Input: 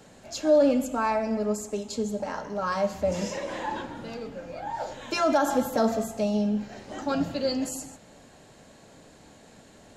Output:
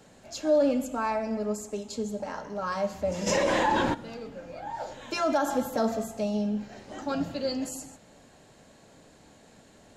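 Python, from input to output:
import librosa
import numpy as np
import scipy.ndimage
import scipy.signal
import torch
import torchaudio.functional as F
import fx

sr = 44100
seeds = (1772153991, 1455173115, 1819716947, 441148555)

y = fx.env_flatten(x, sr, amount_pct=70, at=(3.26, 3.93), fade=0.02)
y = y * librosa.db_to_amplitude(-3.0)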